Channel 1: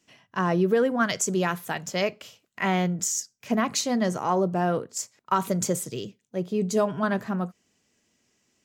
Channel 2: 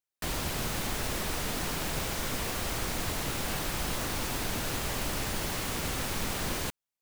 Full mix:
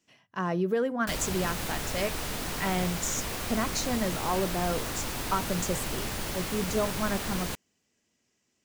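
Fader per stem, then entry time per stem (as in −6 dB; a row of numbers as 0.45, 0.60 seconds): −5.5, −1.0 decibels; 0.00, 0.85 seconds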